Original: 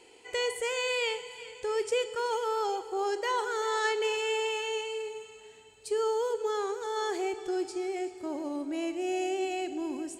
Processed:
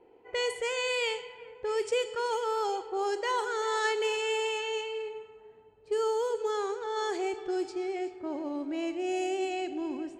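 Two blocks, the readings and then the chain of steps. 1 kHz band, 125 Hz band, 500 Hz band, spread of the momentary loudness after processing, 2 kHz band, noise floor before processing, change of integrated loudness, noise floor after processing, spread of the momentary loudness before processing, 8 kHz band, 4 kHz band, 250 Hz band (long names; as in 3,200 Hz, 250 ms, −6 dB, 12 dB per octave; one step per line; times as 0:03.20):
0.0 dB, can't be measured, 0.0 dB, 7 LU, 0.0 dB, −54 dBFS, 0.0 dB, −57 dBFS, 8 LU, −1.5 dB, 0.0 dB, 0.0 dB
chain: low-pass that shuts in the quiet parts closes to 870 Hz, open at −25.5 dBFS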